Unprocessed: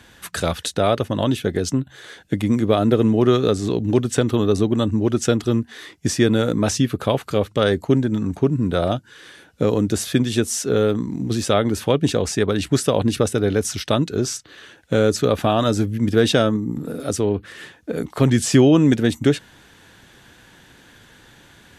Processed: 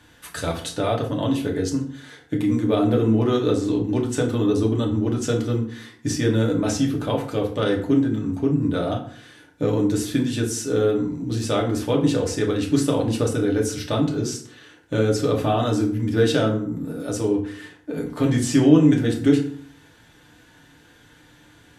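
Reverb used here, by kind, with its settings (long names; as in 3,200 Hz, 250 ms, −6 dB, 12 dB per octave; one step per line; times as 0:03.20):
feedback delay network reverb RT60 0.56 s, low-frequency decay 1.25×, high-frequency decay 0.65×, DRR −1 dB
level −7.5 dB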